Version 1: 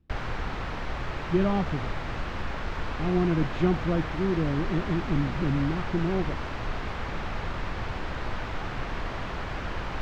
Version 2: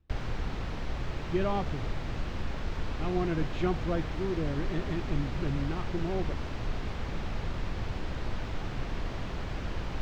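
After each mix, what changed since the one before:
speech: add peaking EQ 210 Hz -10 dB 1.4 oct; background: add peaking EQ 1.3 kHz -8.5 dB 2.5 oct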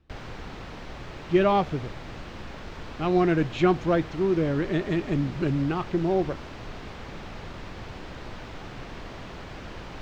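speech +10.5 dB; master: add bass shelf 120 Hz -10 dB

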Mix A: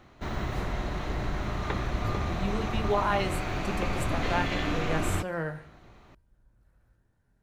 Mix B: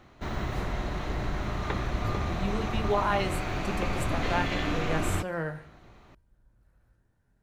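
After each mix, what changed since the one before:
no change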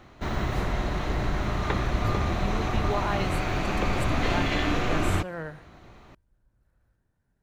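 speech: send -11.5 dB; background +4.0 dB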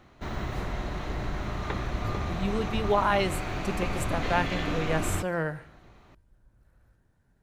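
speech +6.5 dB; background -5.0 dB

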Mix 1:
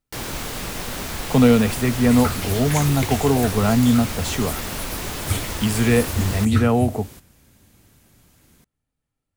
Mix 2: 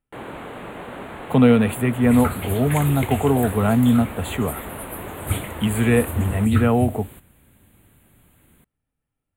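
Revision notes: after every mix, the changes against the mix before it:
first sound: add band-pass filter 560 Hz, Q 0.51; master: add Butterworth band-stop 5.4 kHz, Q 1.1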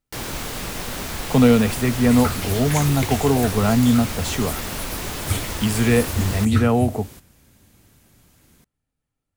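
first sound: remove band-pass filter 560 Hz, Q 0.51; master: remove Butterworth band-stop 5.4 kHz, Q 1.1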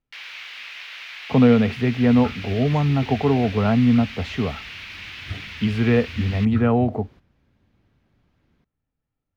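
first sound: add resonant high-pass 2.4 kHz, resonance Q 2.1; second sound -8.0 dB; master: add distance through air 280 m

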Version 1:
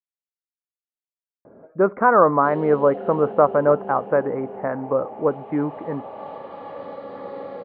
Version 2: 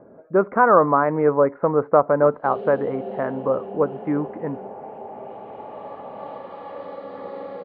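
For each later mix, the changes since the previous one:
speech: entry -1.45 s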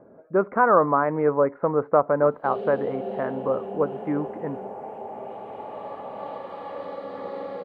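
speech -3.5 dB; master: remove distance through air 97 m

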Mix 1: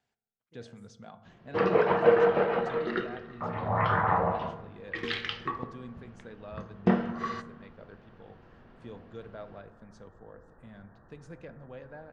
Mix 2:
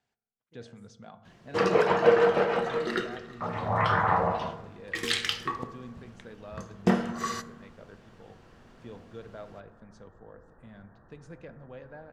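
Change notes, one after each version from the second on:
first sound: remove distance through air 290 m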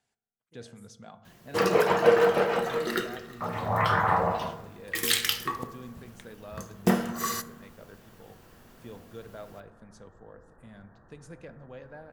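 master: remove distance through air 92 m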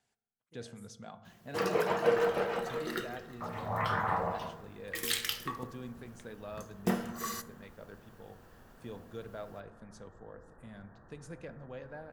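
first sound -7.5 dB

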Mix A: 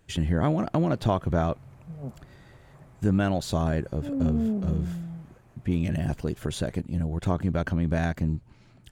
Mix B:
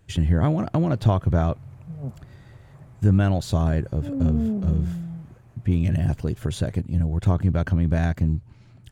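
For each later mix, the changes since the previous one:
master: add peaking EQ 100 Hz +9.5 dB 1.1 oct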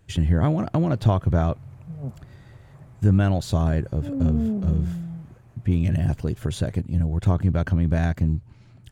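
no change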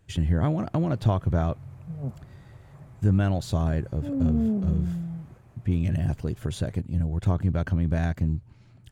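speech -3.5 dB

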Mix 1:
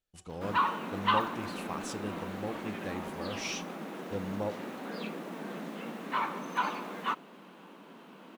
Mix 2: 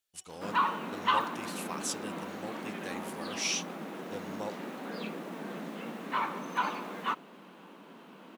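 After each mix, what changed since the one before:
speech: add tilt EQ +3.5 dB/octave; reverb: off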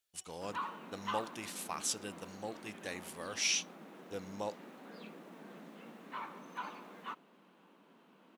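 background -12.0 dB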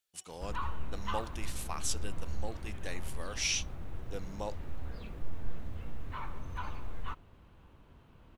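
background: remove brick-wall FIR high-pass 170 Hz

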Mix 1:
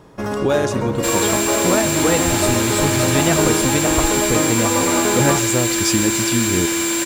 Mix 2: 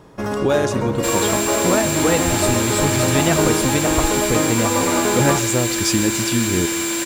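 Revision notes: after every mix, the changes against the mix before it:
second sound: send off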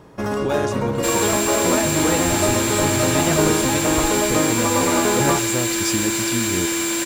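speech -5.0 dB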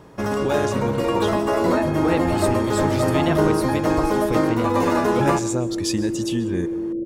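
second sound: add steep low-pass 540 Hz 72 dB/octave

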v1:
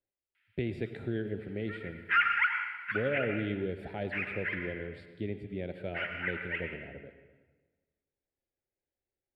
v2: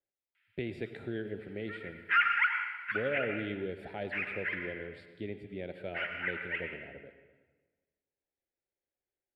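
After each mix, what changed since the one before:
master: add bass shelf 250 Hz -8 dB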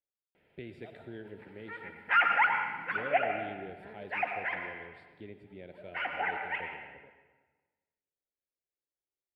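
speech -7.5 dB; background: remove steep high-pass 1.3 kHz 36 dB/octave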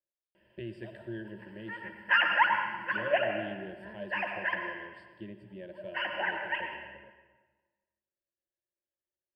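master: add rippled EQ curve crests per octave 1.3, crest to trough 15 dB

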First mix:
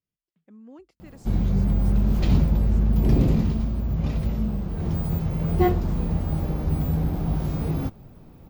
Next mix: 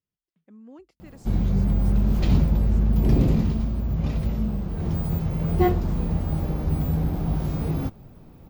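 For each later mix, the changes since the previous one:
no change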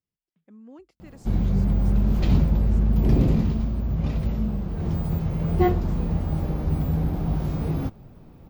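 background: add treble shelf 6.3 kHz -5 dB

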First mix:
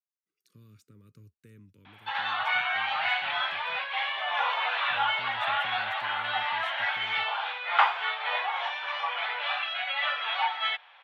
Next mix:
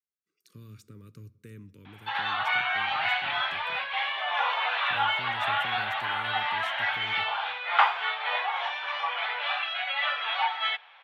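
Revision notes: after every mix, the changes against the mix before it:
speech +6.0 dB; reverb: on, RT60 1.0 s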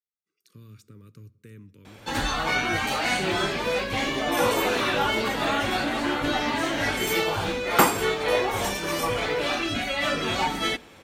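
background: remove elliptic band-pass 770–3400 Hz, stop band 50 dB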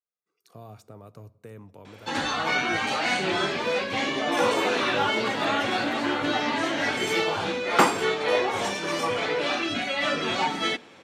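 speech: remove Butterworth band-stop 740 Hz, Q 0.62; background: add band-pass 160–6800 Hz

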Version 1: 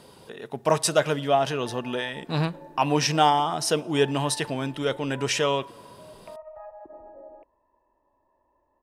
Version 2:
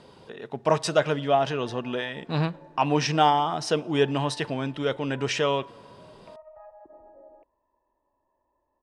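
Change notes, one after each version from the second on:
background -5.0 dB; master: add distance through air 92 m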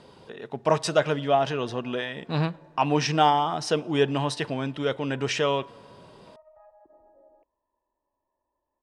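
background -6.5 dB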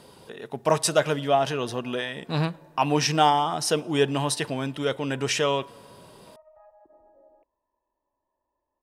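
master: remove distance through air 92 m

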